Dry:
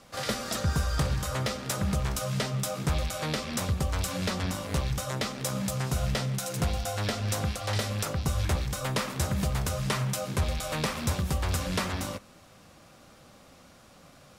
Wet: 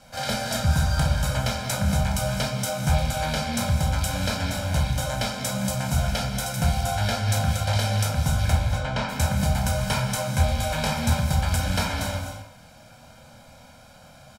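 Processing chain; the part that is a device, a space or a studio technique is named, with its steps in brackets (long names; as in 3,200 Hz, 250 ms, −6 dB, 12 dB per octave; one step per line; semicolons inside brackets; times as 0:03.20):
0:08.52–0:09.09: high-frequency loss of the air 140 metres
microphone above a desk (comb filter 1.3 ms, depth 86%; convolution reverb RT60 0.40 s, pre-delay 19 ms, DRR 2 dB)
reverb whose tail is shaped and stops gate 280 ms rising, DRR 6 dB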